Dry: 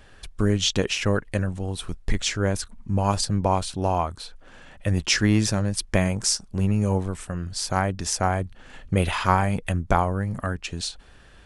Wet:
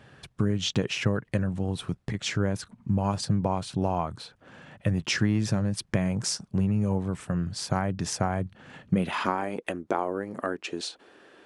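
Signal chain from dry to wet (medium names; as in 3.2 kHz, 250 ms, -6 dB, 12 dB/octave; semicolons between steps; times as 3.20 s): treble shelf 4.4 kHz -9 dB; compression 6:1, threshold -23 dBFS, peak gain reduction 9.5 dB; high-pass sweep 130 Hz -> 340 Hz, 8.72–9.51 s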